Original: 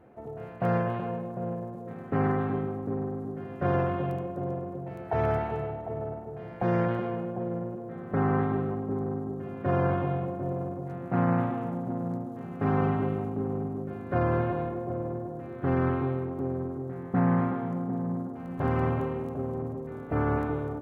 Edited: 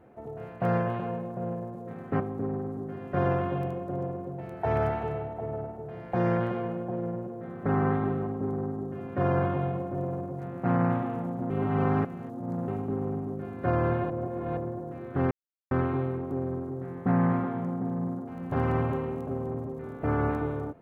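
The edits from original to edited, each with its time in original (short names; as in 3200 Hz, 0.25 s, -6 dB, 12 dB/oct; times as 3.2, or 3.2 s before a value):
2.2–2.68 cut
11.98–13.16 reverse
14.58–15.05 reverse
15.79 insert silence 0.40 s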